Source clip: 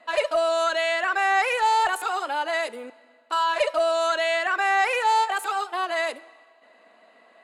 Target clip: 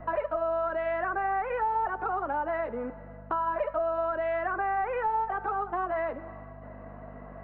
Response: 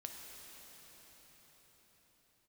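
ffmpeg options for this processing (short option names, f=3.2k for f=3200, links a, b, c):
-filter_complex "[0:a]lowpass=f=1.5k:w=0.5412,lowpass=f=1.5k:w=1.3066,lowshelf=f=240:g=11.5,asplit=2[a][b];[b]acompressor=threshold=-38dB:ratio=6,volume=1dB[c];[a][c]amix=inputs=2:normalize=0,aeval=exprs='val(0)+0.00794*(sin(2*PI*50*n/s)+sin(2*PI*2*50*n/s)/2+sin(2*PI*3*50*n/s)/3+sin(2*PI*4*50*n/s)/4+sin(2*PI*5*50*n/s)/5)':c=same,flanger=delay=2.4:depth=3.8:regen=-83:speed=0.46:shape=triangular,acrossover=split=110|870[d][e][f];[d]acompressor=threshold=-57dB:ratio=4[g];[e]acompressor=threshold=-38dB:ratio=4[h];[f]acompressor=threshold=-40dB:ratio=4[i];[g][h][i]amix=inputs=3:normalize=0,crystalizer=i=1:c=0,volume=5.5dB"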